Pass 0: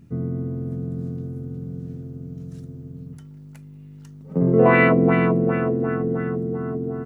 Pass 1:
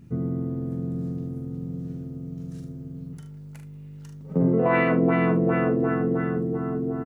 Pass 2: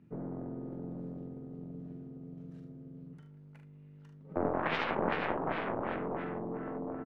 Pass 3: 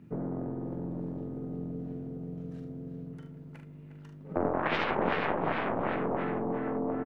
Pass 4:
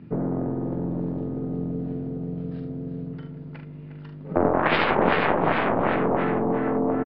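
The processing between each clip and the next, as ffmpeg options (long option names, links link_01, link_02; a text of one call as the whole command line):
ffmpeg -i in.wav -af "alimiter=limit=-11.5dB:level=0:latency=1:release=416,aecho=1:1:42|75:0.473|0.266" out.wav
ffmpeg -i in.wav -filter_complex "[0:a]aeval=exprs='0.316*(cos(1*acos(clip(val(0)/0.316,-1,1)))-cos(1*PI/2))+0.141*(cos(3*acos(clip(val(0)/0.316,-1,1)))-cos(3*PI/2))+0.0562*(cos(4*acos(clip(val(0)/0.316,-1,1)))-cos(4*PI/2))+0.0178*(cos(7*acos(clip(val(0)/0.316,-1,1)))-cos(7*PI/2))':channel_layout=same,acrossover=split=150 3300:gain=0.224 1 0.112[link_01][link_02][link_03];[link_01][link_02][link_03]amix=inputs=3:normalize=0,volume=-5.5dB" out.wav
ffmpeg -i in.wav -filter_complex "[0:a]asplit=2[link_01][link_02];[link_02]acompressor=threshold=-41dB:ratio=6,volume=3dB[link_03];[link_01][link_03]amix=inputs=2:normalize=0,asplit=2[link_04][link_05];[link_05]adelay=357,lowpass=frequency=3500:poles=1,volume=-9dB,asplit=2[link_06][link_07];[link_07]adelay=357,lowpass=frequency=3500:poles=1,volume=0.46,asplit=2[link_08][link_09];[link_09]adelay=357,lowpass=frequency=3500:poles=1,volume=0.46,asplit=2[link_10][link_11];[link_11]adelay=357,lowpass=frequency=3500:poles=1,volume=0.46,asplit=2[link_12][link_13];[link_13]adelay=357,lowpass=frequency=3500:poles=1,volume=0.46[link_14];[link_04][link_06][link_08][link_10][link_12][link_14]amix=inputs=6:normalize=0" out.wav
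ffmpeg -i in.wav -af "aresample=11025,aresample=44100,volume=8.5dB" out.wav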